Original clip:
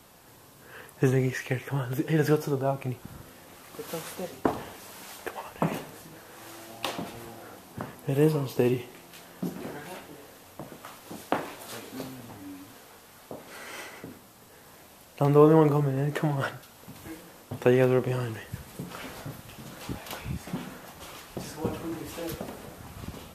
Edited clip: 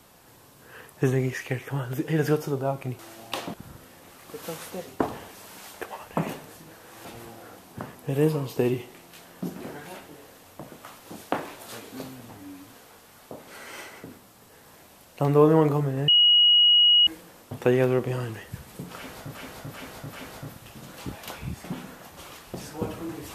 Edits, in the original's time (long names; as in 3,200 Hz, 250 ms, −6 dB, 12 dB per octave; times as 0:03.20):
0:06.50–0:07.05: move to 0:02.99
0:16.08–0:17.07: beep over 2,900 Hz −14 dBFS
0:18.96–0:19.35: repeat, 4 plays